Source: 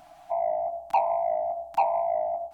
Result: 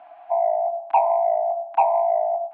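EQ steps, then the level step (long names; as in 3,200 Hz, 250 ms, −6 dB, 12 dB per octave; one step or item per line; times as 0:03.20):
high-frequency loss of the air 210 metres
loudspeaker in its box 440–3,200 Hz, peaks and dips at 450 Hz +5 dB, 700 Hz +6 dB, 1,000 Hz +5 dB, 1,600 Hz +4 dB, 2,500 Hz +4 dB
+1.5 dB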